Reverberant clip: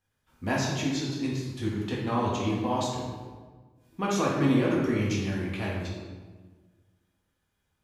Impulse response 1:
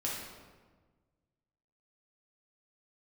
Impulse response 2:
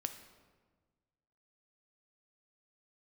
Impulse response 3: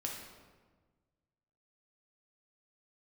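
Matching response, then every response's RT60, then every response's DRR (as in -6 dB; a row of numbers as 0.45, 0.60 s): 1; 1.4, 1.4, 1.4 s; -5.5, 7.5, -1.5 dB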